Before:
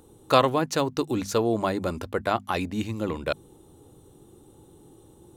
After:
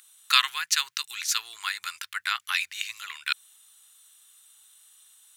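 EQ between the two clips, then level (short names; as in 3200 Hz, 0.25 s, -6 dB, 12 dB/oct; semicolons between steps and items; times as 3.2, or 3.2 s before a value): inverse Chebyshev high-pass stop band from 640 Hz, stop band 50 dB; +9.0 dB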